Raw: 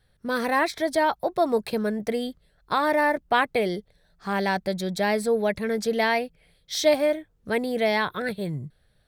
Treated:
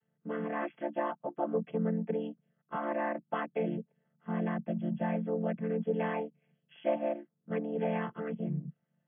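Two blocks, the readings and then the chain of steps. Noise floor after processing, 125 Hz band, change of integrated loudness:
-81 dBFS, -1.0 dB, -10.0 dB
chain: vocoder on a held chord minor triad, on D3; brick-wall FIR low-pass 3.4 kHz; trim -8 dB

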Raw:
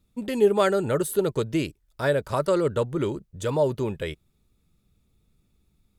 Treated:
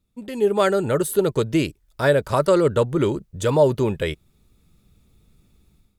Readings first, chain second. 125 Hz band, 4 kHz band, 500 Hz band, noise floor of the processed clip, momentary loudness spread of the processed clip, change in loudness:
+5.5 dB, +4.5 dB, +4.0 dB, -65 dBFS, 9 LU, +4.5 dB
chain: level rider gain up to 13.5 dB; trim -4.5 dB

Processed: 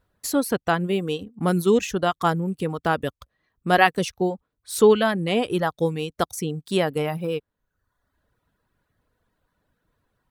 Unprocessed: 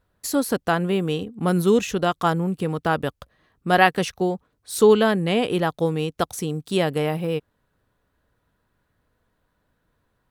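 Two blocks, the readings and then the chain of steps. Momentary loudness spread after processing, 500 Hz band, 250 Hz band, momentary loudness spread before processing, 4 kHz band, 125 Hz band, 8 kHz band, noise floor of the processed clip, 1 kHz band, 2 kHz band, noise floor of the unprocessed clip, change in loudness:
11 LU, -1.0 dB, -1.5 dB, 10 LU, -1.0 dB, -2.0 dB, -0.5 dB, -82 dBFS, -0.5 dB, -0.5 dB, -72 dBFS, -1.0 dB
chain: reverb removal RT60 0.83 s

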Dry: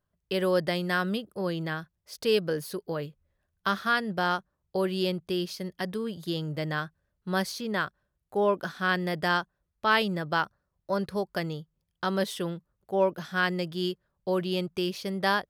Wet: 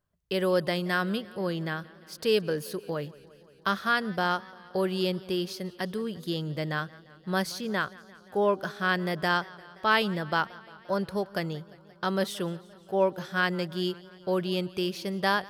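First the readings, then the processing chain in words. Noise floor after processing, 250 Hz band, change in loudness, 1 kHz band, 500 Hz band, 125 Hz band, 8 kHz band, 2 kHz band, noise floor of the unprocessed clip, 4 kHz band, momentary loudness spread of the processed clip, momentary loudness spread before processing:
-55 dBFS, 0.0 dB, 0.0 dB, 0.0 dB, 0.0 dB, 0.0 dB, 0.0 dB, 0.0 dB, -81 dBFS, 0.0 dB, 9 LU, 9 LU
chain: modulated delay 174 ms, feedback 72%, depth 105 cents, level -22 dB

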